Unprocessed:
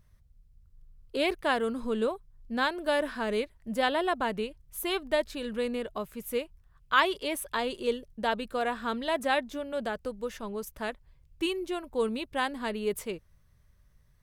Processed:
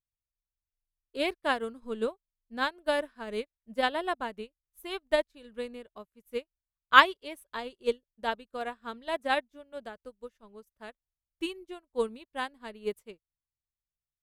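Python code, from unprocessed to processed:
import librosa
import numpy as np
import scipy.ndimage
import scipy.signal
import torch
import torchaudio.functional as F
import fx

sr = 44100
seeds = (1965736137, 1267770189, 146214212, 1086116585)

y = fx.upward_expand(x, sr, threshold_db=-49.0, expansion=2.5)
y = y * librosa.db_to_amplitude(8.0)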